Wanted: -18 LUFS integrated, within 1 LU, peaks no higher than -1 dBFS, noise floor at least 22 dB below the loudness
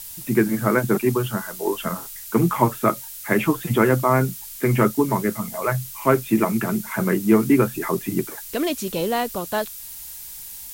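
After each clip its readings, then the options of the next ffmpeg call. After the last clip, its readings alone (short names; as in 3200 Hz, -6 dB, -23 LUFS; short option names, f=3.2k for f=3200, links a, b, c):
noise floor -37 dBFS; noise floor target -44 dBFS; loudness -22.0 LUFS; peak -4.0 dBFS; loudness target -18.0 LUFS
-> -af "afftdn=nr=7:nf=-37"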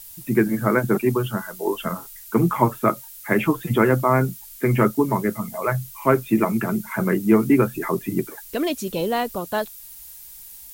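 noise floor -42 dBFS; noise floor target -44 dBFS
-> -af "afftdn=nr=6:nf=-42"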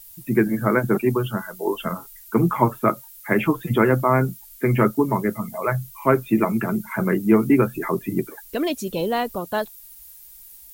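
noise floor -45 dBFS; loudness -22.0 LUFS; peak -4.0 dBFS; loudness target -18.0 LUFS
-> -af "volume=4dB,alimiter=limit=-1dB:level=0:latency=1"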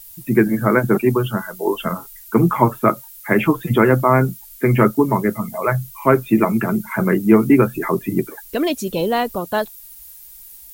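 loudness -18.0 LUFS; peak -1.0 dBFS; noise floor -41 dBFS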